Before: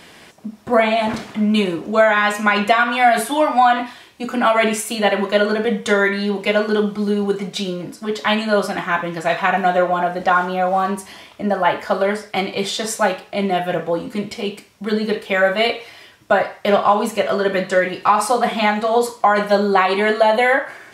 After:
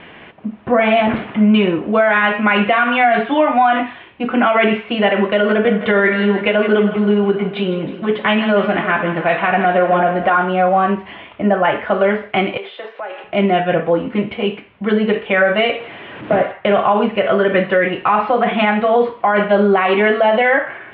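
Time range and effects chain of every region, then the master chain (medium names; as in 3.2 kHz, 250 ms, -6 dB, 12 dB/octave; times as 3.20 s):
5.33–10.38 s: low-pass 8 kHz + feedback delay 159 ms, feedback 59%, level -13 dB
12.57–13.24 s: high-pass 360 Hz 24 dB/octave + compression, threshold -30 dBFS
15.79–16.52 s: one-bit delta coder 32 kbps, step -29.5 dBFS + high-pass 160 Hz + tilt shelf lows +4.5 dB, about 740 Hz
whole clip: steep low-pass 3.1 kHz 48 dB/octave; dynamic bell 950 Hz, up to -4 dB, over -31 dBFS, Q 2.9; peak limiter -10.5 dBFS; trim +5.5 dB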